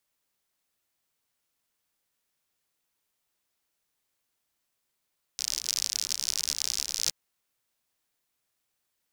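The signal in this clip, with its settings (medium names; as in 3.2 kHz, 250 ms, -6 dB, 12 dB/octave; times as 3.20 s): rain from filtered ticks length 1.72 s, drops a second 67, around 5.4 kHz, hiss -26.5 dB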